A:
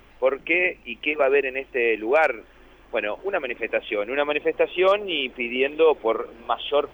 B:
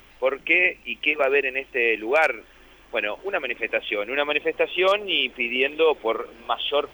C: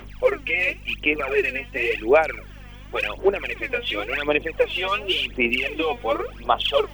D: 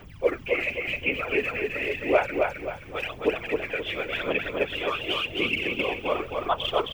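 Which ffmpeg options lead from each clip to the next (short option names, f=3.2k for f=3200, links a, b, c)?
-af "highshelf=f=2.3k:g=11,volume=-2.5dB"
-af "alimiter=limit=-16.5dB:level=0:latency=1:release=42,aphaser=in_gain=1:out_gain=1:delay=4.2:decay=0.77:speed=0.92:type=sinusoidal,aeval=exprs='val(0)+0.00891*(sin(2*PI*50*n/s)+sin(2*PI*2*50*n/s)/2+sin(2*PI*3*50*n/s)/3+sin(2*PI*4*50*n/s)/4+sin(2*PI*5*50*n/s)/5)':c=same"
-filter_complex "[0:a]afftfilt=real='hypot(re,im)*cos(2*PI*random(0))':imag='hypot(re,im)*sin(2*PI*random(1))':win_size=512:overlap=0.75,asplit=2[a][b];[b]aecho=0:1:264|528|792|1056|1320:0.668|0.247|0.0915|0.0339|0.0125[c];[a][c]amix=inputs=2:normalize=0"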